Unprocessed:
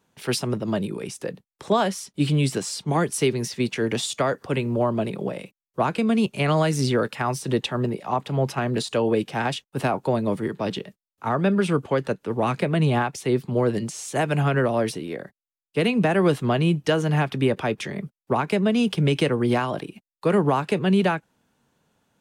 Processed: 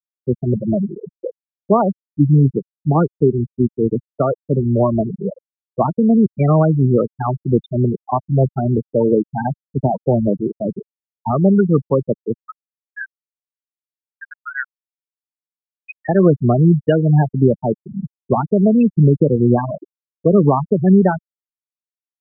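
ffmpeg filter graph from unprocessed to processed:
ffmpeg -i in.wav -filter_complex "[0:a]asettb=1/sr,asplit=3[link_01][link_02][link_03];[link_01]atrim=end=12.344[link_04];[link_02]atrim=start=12.34:end=16.09,asetpts=PTS-STARTPTS,afade=type=in:duration=0.004:curve=qsin,afade=type=out:start_time=3.746:duration=0.004:curve=qsin,acrossover=split=3100[link_05][link_06];[link_06]acompressor=threshold=-44dB:ratio=4:attack=1:release=60[link_07];[link_05][link_07]amix=inputs=2:normalize=0,aeval=exprs='clip(val(0),-1,0.0251)':channel_layout=same,highpass=frequency=1600:width_type=q:width=1.9[link_08];[link_03]atrim=start=16.086[link_09];[link_04][link_08]acrossfade=duration=0.004:curve1=hsin:curve2=qsin[link_10];[link_10][link_09]acrossfade=duration=0.004:curve1=qsin:curve2=hsin,highshelf=frequency=3300:gain=-9,afftfilt=real='re*gte(hypot(re,im),0.224)':imag='im*gte(hypot(re,im),0.224)':win_size=1024:overlap=0.75,lowshelf=frequency=140:gain=7,volume=6.5dB" out.wav

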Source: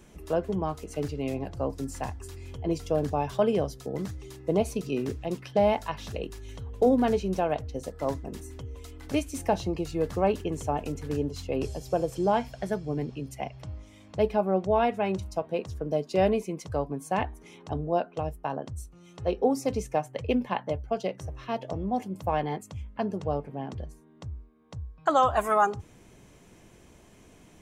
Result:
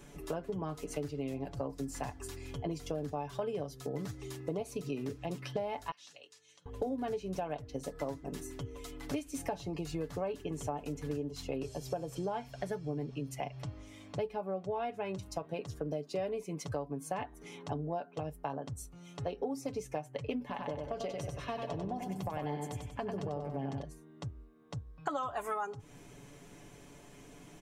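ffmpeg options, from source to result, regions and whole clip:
ffmpeg -i in.wav -filter_complex "[0:a]asettb=1/sr,asplit=3[link_01][link_02][link_03];[link_01]atrim=end=5.914[link_04];[link_02]atrim=start=5.91:end=6.66,asetpts=PTS-STARTPTS,afade=type=in:duration=0.004:curve=qsin,afade=type=out:start_time=0.746:duration=0.004:curve=qsin,bandpass=frequency=7100:width_type=q:width=1.2,afreqshift=51,aemphasis=mode=reproduction:type=50fm[link_05];[link_03]atrim=start=6.656[link_06];[link_04][link_05]acrossfade=duration=0.004:curve1=hsin:curve2=qsin[link_07];[link_07][link_06]acrossfade=duration=0.004:curve1=qsin:curve2=hsin,asettb=1/sr,asplit=3[link_08][link_09][link_10];[link_08]atrim=end=20.404[link_11];[link_09]atrim=start=20.4:end=23.82,asetpts=PTS-STARTPTS,afade=type=in:duration=0.004:curve=qsin,afade=type=out:start_time=3.416:duration=0.004:curve=qsin,acompressor=threshold=-29dB:ratio=6:attack=3.2:release=140:knee=1:detection=peak,aecho=1:1:95|190|285|380|475:0.562|0.242|0.104|0.0447|0.0192,atrim=end_sample=150822[link_12];[link_10]atrim=start=23.816[link_13];[link_11][link_12]acrossfade=duration=0.004:curve1=hsin:curve2=qsin[link_14];[link_14][link_13]acrossfade=duration=0.004:curve1=qsin:curve2=hsin,equalizer=frequency=71:width_type=o:width=0.65:gain=-8,aecho=1:1:7:0.54,acompressor=threshold=-34dB:ratio=6" out.wav

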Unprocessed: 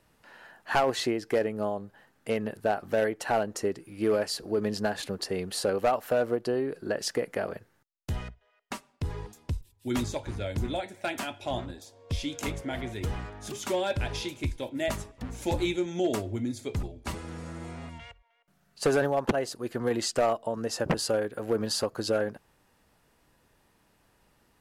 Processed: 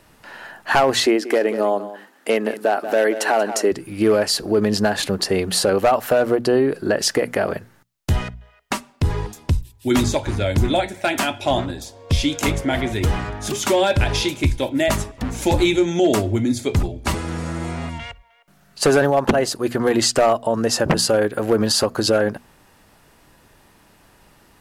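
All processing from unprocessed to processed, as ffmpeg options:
ffmpeg -i in.wav -filter_complex "[0:a]asettb=1/sr,asplit=3[link_01][link_02][link_03];[link_01]atrim=end=1.064[link_04];[link_02]atrim=start=1.06:end=3.72,asetpts=PTS-STARTPTS,afade=type=in:duration=0.004:curve=qsin,afade=type=out:start_time=2.656:duration=0.004:curve=qsin,highpass=frequency=250:width=0.5412,highpass=frequency=250:width=1.3066,aecho=1:1:184:0.168,atrim=end_sample=117306[link_05];[link_03]atrim=start=3.716[link_06];[link_04][link_05]acrossfade=duration=0.004:curve1=hsin:curve2=qsin[link_07];[link_07][link_06]acrossfade=duration=0.004:curve1=qsin:curve2=hsin,equalizer=frequency=480:width_type=o:width=0.26:gain=-3,bandreject=frequency=60:width_type=h:width=6,bandreject=frequency=120:width_type=h:width=6,bandreject=frequency=180:width_type=h:width=6,bandreject=frequency=240:width_type=h:width=6,alimiter=level_in=20.5dB:limit=-1dB:release=50:level=0:latency=1,volume=-7dB" out.wav

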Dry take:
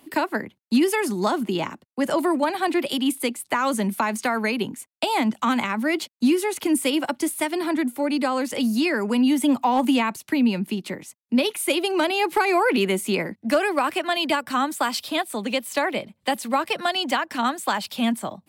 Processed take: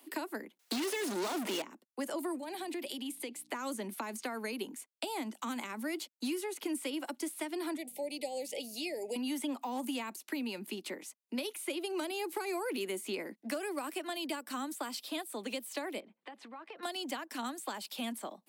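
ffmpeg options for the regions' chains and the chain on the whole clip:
ffmpeg -i in.wav -filter_complex "[0:a]asettb=1/sr,asplit=3[link_01][link_02][link_03];[link_01]atrim=end=0.594[link_04];[link_02]atrim=start=0.59:end=1.62,asetpts=PTS-STARTPTS,afade=type=in:duration=0.004:curve=qsin,afade=type=out:start_time=1.026:duration=0.004:curve=qsin,aecho=1:1:4.2:0.43,atrim=end_sample=45423,asplit=2[link_05][link_06];[link_06]highpass=frequency=720:poles=1,volume=38dB,asoftclip=type=tanh:threshold=-8dB[link_07];[link_05][link_07]amix=inputs=2:normalize=0,lowpass=frequency=5700:poles=1,volume=-6dB[link_08];[link_03]atrim=start=1.616[link_09];[link_04][link_08]acrossfade=duration=0.004:curve1=hsin:curve2=qsin[link_10];[link_10][link_09]acrossfade=duration=0.004:curve1=qsin:curve2=hsin,asettb=1/sr,asplit=3[link_11][link_12][link_13];[link_11]atrim=end=2.384[link_14];[link_12]atrim=start=2.38:end=3.51,asetpts=PTS-STARTPTS,afade=type=in:duration=0.004:curve=qsin,afade=type=out:start_time=1.126:duration=0.004:curve=qsin,equalizer=frequency=1300:width_type=o:width=0.51:gain=-9,acompressor=threshold=-26dB:ratio=6:attack=3.2:release=140:knee=1:detection=peak,aeval=exprs='val(0)+0.00562*(sin(2*PI*60*n/s)+sin(2*PI*2*60*n/s)/2+sin(2*PI*3*60*n/s)/3+sin(2*PI*4*60*n/s)/4+sin(2*PI*5*60*n/s)/5)':channel_layout=same[link_15];[link_13]atrim=start=3.506[link_16];[link_14][link_15]acrossfade=duration=0.004:curve1=hsin:curve2=qsin[link_17];[link_17][link_16]acrossfade=duration=0.004:curve1=qsin:curve2=hsin,asettb=1/sr,asplit=3[link_18][link_19][link_20];[link_18]atrim=end=7.774[link_21];[link_19]atrim=start=7.77:end=9.16,asetpts=PTS-STARTPTS,afade=type=in:duration=0.004:curve=qsin,afade=type=out:start_time=1.386:duration=0.004:curve=qsin,lowshelf=frequency=360:width_type=q:width=1.5:gain=-11,aeval=exprs='val(0)+0.00891*(sin(2*PI*50*n/s)+sin(2*PI*2*50*n/s)/2+sin(2*PI*3*50*n/s)/3+sin(2*PI*4*50*n/s)/4+sin(2*PI*5*50*n/s)/5)':channel_layout=same,asuperstop=centerf=1300:order=8:qfactor=1[link_22];[link_20]atrim=start=9.156[link_23];[link_21][link_22]acrossfade=duration=0.004:curve1=hsin:curve2=qsin[link_24];[link_24][link_23]acrossfade=duration=0.004:curve1=qsin:curve2=hsin,asettb=1/sr,asplit=3[link_25][link_26][link_27];[link_25]atrim=end=16.004[link_28];[link_26]atrim=start=16:end=16.83,asetpts=PTS-STARTPTS,afade=type=in:duration=0.004:curve=qsin,afade=type=out:start_time=0.826:duration=0.004:curve=qsin,lowpass=2200,bandreject=frequency=580:width=7.6,acompressor=threshold=-37dB:ratio=8:attack=3.2:release=140:knee=1:detection=peak[link_29];[link_27]atrim=start=16.826[link_30];[link_28][link_29]acrossfade=duration=0.004:curve1=hsin:curve2=qsin[link_31];[link_31][link_30]acrossfade=duration=0.004:curve1=qsin:curve2=hsin,highpass=frequency=270:width=0.5412,highpass=frequency=270:width=1.3066,highshelf=frequency=4500:gain=5.5,acrossover=split=390|5600[link_32][link_33][link_34];[link_32]acompressor=threshold=-31dB:ratio=4[link_35];[link_33]acompressor=threshold=-34dB:ratio=4[link_36];[link_34]acompressor=threshold=-40dB:ratio=4[link_37];[link_35][link_36][link_37]amix=inputs=3:normalize=0,volume=-7dB" out.wav

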